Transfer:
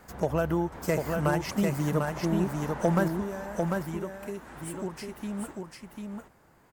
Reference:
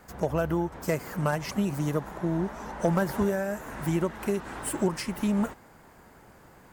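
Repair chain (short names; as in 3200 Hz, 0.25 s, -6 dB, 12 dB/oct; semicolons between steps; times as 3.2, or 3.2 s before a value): inverse comb 0.746 s -4 dB; gain 0 dB, from 3.08 s +9 dB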